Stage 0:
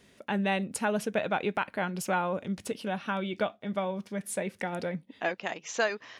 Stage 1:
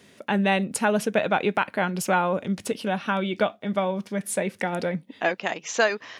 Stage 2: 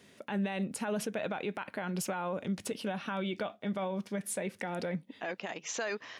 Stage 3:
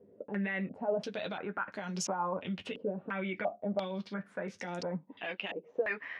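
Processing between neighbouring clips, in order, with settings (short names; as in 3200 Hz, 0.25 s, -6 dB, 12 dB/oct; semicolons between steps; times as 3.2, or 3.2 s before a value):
HPF 97 Hz; gain +6.5 dB
limiter -20.5 dBFS, peak gain reduction 12 dB; gain -5.5 dB
flange 0.55 Hz, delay 9.7 ms, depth 2.1 ms, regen -32%; stepped low-pass 2.9 Hz 480–6100 Hz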